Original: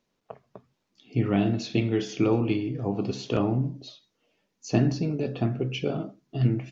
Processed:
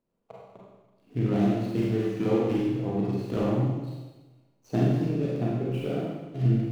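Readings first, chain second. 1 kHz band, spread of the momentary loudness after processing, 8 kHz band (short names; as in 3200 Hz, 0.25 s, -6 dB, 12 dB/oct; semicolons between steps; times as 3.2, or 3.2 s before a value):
-0.5 dB, 8 LU, n/a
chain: median filter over 25 samples; Schroeder reverb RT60 1.2 s, combs from 32 ms, DRR -4.5 dB; gain -5 dB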